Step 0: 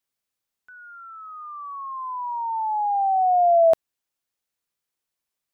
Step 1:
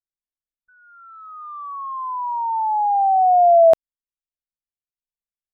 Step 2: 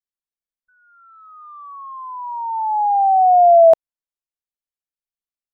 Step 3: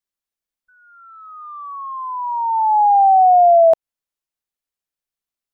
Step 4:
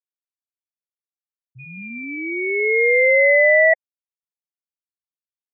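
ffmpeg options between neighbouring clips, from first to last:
ffmpeg -i in.wav -af "anlmdn=25.1,volume=4.5dB" out.wav
ffmpeg -i in.wav -af "adynamicequalizer=threshold=0.0447:dfrequency=710:dqfactor=1.1:tfrequency=710:tqfactor=1.1:attack=5:release=100:ratio=0.375:range=3.5:mode=boostabove:tftype=bell,volume=-4.5dB" out.wav
ffmpeg -i in.wav -af "acompressor=threshold=-14dB:ratio=6,volume=5dB" out.wav
ffmpeg -i in.wav -af "aeval=exprs='val(0)*sin(2*PI*1300*n/s)':channel_layout=same,afftfilt=real='re*gte(hypot(re,im),0.158)':imag='im*gte(hypot(re,im),0.158)':win_size=1024:overlap=0.75" out.wav

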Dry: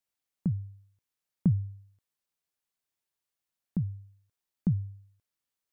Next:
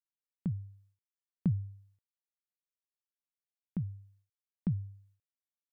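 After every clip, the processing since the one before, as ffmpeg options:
ffmpeg -i in.wav -af "agate=range=-33dB:threshold=-59dB:ratio=3:detection=peak,volume=-5dB" out.wav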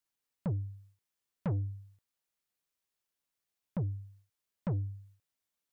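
ffmpeg -i in.wav -af "asoftclip=type=tanh:threshold=-37dB,volume=8dB" out.wav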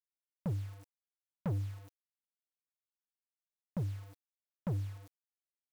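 ffmpeg -i in.wav -af "acrusher=bits=8:mix=0:aa=0.000001,volume=-2dB" out.wav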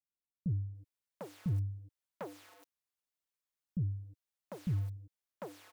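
ffmpeg -i in.wav -filter_complex "[0:a]acrossover=split=300[link_01][link_02];[link_02]adelay=750[link_03];[link_01][link_03]amix=inputs=2:normalize=0,volume=2dB" out.wav

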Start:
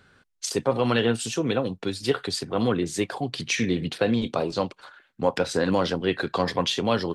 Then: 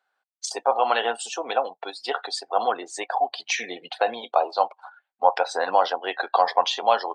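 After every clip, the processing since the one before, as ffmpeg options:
ffmpeg -i in.wav -af "highpass=frequency=760:width_type=q:width=4.9,afftdn=noise_reduction=20:noise_floor=-37" out.wav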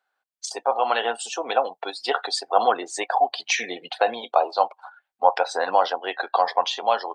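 ffmpeg -i in.wav -af "dynaudnorm=framelen=260:gausssize=11:maxgain=11.5dB,volume=-1.5dB" out.wav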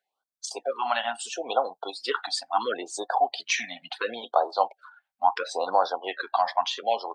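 ffmpeg -i in.wav -af "afftfilt=real='re*(1-between(b*sr/1024,380*pow(2500/380,0.5+0.5*sin(2*PI*0.73*pts/sr))/1.41,380*pow(2500/380,0.5+0.5*sin(2*PI*0.73*pts/sr))*1.41))':imag='im*(1-between(b*sr/1024,380*pow(2500/380,0.5+0.5*sin(2*PI*0.73*pts/sr))/1.41,380*pow(2500/380,0.5+0.5*sin(2*PI*0.73*pts/sr))*1.41))':win_size=1024:overlap=0.75,volume=-3dB" out.wav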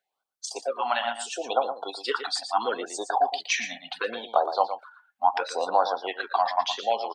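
ffmpeg -i in.wav -af "aecho=1:1:116:0.316" out.wav

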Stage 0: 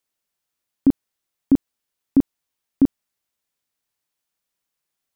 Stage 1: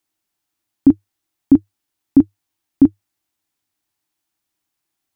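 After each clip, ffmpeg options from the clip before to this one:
ffmpeg -i in.wav -filter_complex "[0:a]equalizer=frequency=100:width_type=o:width=0.33:gain=9,equalizer=frequency=315:width_type=o:width=0.33:gain=11,equalizer=frequency=500:width_type=o:width=0.33:gain=-8,equalizer=frequency=800:width_type=o:width=0.33:gain=4,asplit=2[link_01][link_02];[link_02]alimiter=limit=-9dB:level=0:latency=1:release=134,volume=-3dB[link_03];[link_01][link_03]amix=inputs=2:normalize=0,volume=-2dB" out.wav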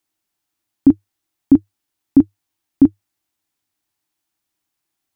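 ffmpeg -i in.wav -af anull out.wav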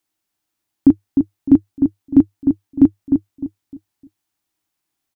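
ffmpeg -i in.wav -filter_complex "[0:a]asplit=2[link_01][link_02];[link_02]adelay=304,lowpass=frequency=930:poles=1,volume=-5dB,asplit=2[link_03][link_04];[link_04]adelay=304,lowpass=frequency=930:poles=1,volume=0.33,asplit=2[link_05][link_06];[link_06]adelay=304,lowpass=frequency=930:poles=1,volume=0.33,asplit=2[link_07][link_08];[link_08]adelay=304,lowpass=frequency=930:poles=1,volume=0.33[link_09];[link_01][link_03][link_05][link_07][link_09]amix=inputs=5:normalize=0" out.wav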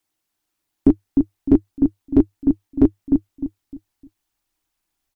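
ffmpeg -i in.wav -af "asubboost=boost=11:cutoff=50,volume=1dB" -ar 44100 -c:a nellymoser out.flv

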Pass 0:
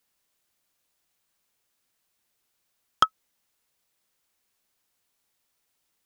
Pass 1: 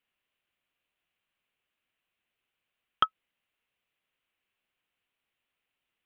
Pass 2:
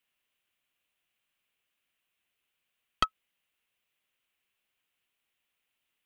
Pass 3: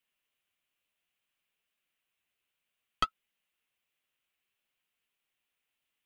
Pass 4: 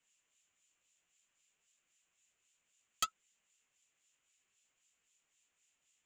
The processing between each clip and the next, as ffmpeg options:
ffmpeg -i in.wav -af "highshelf=frequency=3900:width_type=q:width=3:gain=-11.5,bandreject=frequency=870:width=18,volume=-6dB" out.wav
ffmpeg -i in.wav -filter_complex "[0:a]highshelf=frequency=3200:gain=8.5,acrossover=split=180|780[link_01][link_02][link_03];[link_03]aeval=exprs='clip(val(0),-1,0.0596)':channel_layout=same[link_04];[link_01][link_02][link_04]amix=inputs=3:normalize=0,volume=-1.5dB" out.wav
ffmpeg -i in.wav -af "flanger=delay=4.4:depth=9.4:regen=-43:speed=0.6:shape=sinusoidal,volume=1dB" out.wav
ffmpeg -i in.wav -filter_complex "[0:a]acrossover=split=2400[link_01][link_02];[link_01]aeval=exprs='val(0)*(1-0.7/2+0.7/2*cos(2*PI*3.8*n/s))':channel_layout=same[link_03];[link_02]aeval=exprs='val(0)*(1-0.7/2-0.7/2*cos(2*PI*3.8*n/s))':channel_layout=same[link_04];[link_03][link_04]amix=inputs=2:normalize=0,lowpass=frequency=7100:width_type=q:width=12,asoftclip=type=tanh:threshold=-31dB,volume=5.5dB" out.wav

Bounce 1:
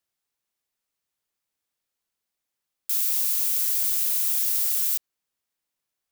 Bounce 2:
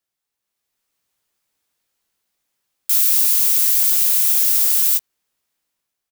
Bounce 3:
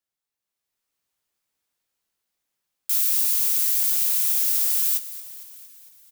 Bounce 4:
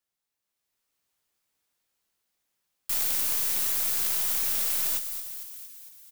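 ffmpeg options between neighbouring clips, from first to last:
ffmpeg -i in.wav -filter_complex "[0:a]dynaudnorm=framelen=190:gausssize=7:maxgain=9dB,asplit=2[link_01][link_02];[link_02]adelay=17,volume=-8dB[link_03];[link_01][link_03]amix=inputs=2:normalize=0" out.wav
ffmpeg -i in.wav -filter_complex "[0:a]asplit=7[link_01][link_02][link_03][link_04][link_05][link_06][link_07];[link_02]adelay=228,afreqshift=-150,volume=-16dB[link_08];[link_03]adelay=456,afreqshift=-300,volume=-20dB[link_09];[link_04]adelay=684,afreqshift=-450,volume=-24dB[link_10];[link_05]adelay=912,afreqshift=-600,volume=-28dB[link_11];[link_06]adelay=1140,afreqshift=-750,volume=-32.1dB[link_12];[link_07]adelay=1368,afreqshift=-900,volume=-36.1dB[link_13];[link_01][link_08][link_09][link_10][link_11][link_12][link_13]amix=inputs=7:normalize=0,volume=-6dB" out.wav
ffmpeg -i in.wav -af "aeval=exprs='clip(val(0),-1,0.0398)':channel_layout=same,aeval=exprs='0.422*(cos(1*acos(clip(val(0)/0.422,-1,1)))-cos(1*PI/2))+0.075*(cos(6*acos(clip(val(0)/0.422,-1,1)))-cos(6*PI/2))':channel_layout=same,volume=1.5dB" out.wav

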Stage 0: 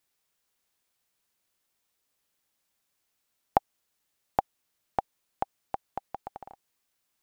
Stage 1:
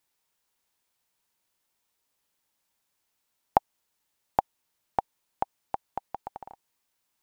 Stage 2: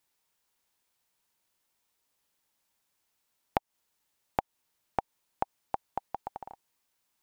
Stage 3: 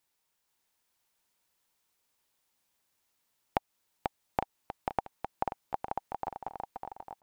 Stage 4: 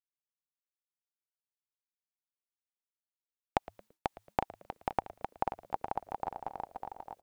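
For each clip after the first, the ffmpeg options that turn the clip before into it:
ffmpeg -i in.wav -af "equalizer=frequency=920:width=7.4:gain=6.5" out.wav
ffmpeg -i in.wav -af "acompressor=threshold=-24dB:ratio=10" out.wav
ffmpeg -i in.wav -af "aecho=1:1:490|857.5|1133|1340|1495:0.631|0.398|0.251|0.158|0.1,volume=-1.5dB" out.wav
ffmpeg -i in.wav -filter_complex "[0:a]asplit=4[link_01][link_02][link_03][link_04];[link_02]adelay=112,afreqshift=-110,volume=-19dB[link_05];[link_03]adelay=224,afreqshift=-220,volume=-27dB[link_06];[link_04]adelay=336,afreqshift=-330,volume=-34.9dB[link_07];[link_01][link_05][link_06][link_07]amix=inputs=4:normalize=0,agate=range=-33dB:threshold=-58dB:ratio=3:detection=peak" out.wav

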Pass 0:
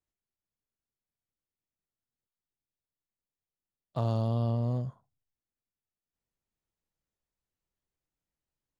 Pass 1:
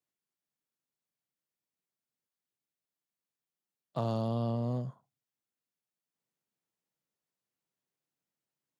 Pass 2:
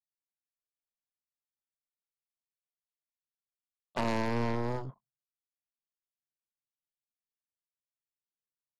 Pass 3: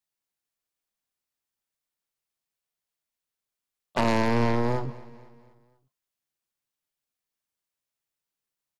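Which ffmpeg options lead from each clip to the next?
ffmpeg -i in.wav -af "highpass=frequency=130:width=0.5412,highpass=frequency=130:width=1.3066" out.wav
ffmpeg -i in.wav -af "anlmdn=0.0001,aeval=exprs='0.1*(cos(1*acos(clip(val(0)/0.1,-1,1)))-cos(1*PI/2))+0.0158*(cos(6*acos(clip(val(0)/0.1,-1,1)))-cos(6*PI/2))+0.0316*(cos(7*acos(clip(val(0)/0.1,-1,1)))-cos(7*PI/2))':channel_layout=same" out.wav
ffmpeg -i in.wav -af "aecho=1:1:244|488|732|976:0.106|0.0508|0.0244|0.0117,volume=7.5dB" out.wav

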